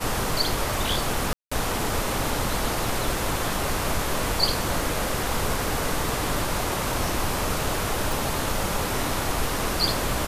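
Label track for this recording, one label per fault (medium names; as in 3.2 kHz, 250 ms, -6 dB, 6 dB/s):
1.330000	1.510000	dropout 185 ms
8.120000	8.120000	pop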